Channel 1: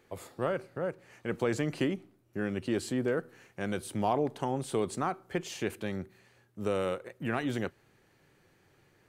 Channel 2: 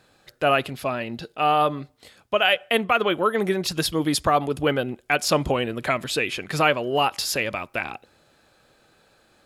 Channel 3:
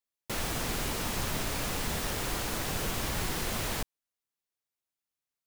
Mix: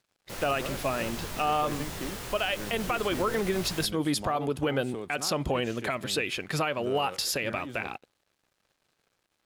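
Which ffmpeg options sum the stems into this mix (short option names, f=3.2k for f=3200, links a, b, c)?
-filter_complex "[0:a]adelay=200,volume=-7.5dB[a];[1:a]alimiter=limit=-11.5dB:level=0:latency=1:release=126,volume=-2.5dB[b];[2:a]flanger=delay=19:depth=5.7:speed=1.6,volume=-1.5dB[c];[a][b][c]amix=inputs=3:normalize=0,aeval=exprs='sgn(val(0))*max(abs(val(0))-0.00126,0)':c=same,alimiter=limit=-18dB:level=0:latency=1:release=60"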